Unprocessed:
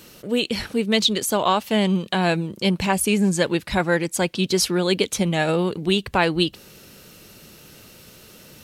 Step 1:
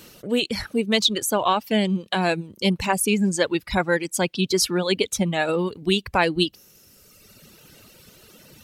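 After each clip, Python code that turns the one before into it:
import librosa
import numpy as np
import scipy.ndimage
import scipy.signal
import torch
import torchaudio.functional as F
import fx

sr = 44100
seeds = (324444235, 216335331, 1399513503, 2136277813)

y = fx.dereverb_blind(x, sr, rt60_s=1.6)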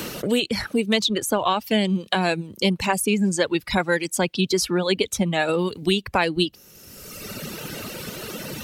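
y = fx.band_squash(x, sr, depth_pct=70)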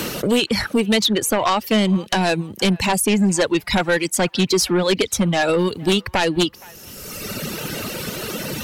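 y = fx.fold_sine(x, sr, drive_db=9, ceiling_db=-4.5)
y = fx.echo_wet_bandpass(y, sr, ms=468, feedback_pct=35, hz=1400.0, wet_db=-22)
y = y * 10.0 ** (-7.0 / 20.0)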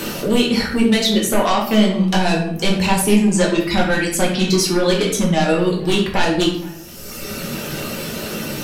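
y = fx.room_shoebox(x, sr, seeds[0], volume_m3=120.0, walls='mixed', distance_m=1.2)
y = y * 10.0 ** (-3.5 / 20.0)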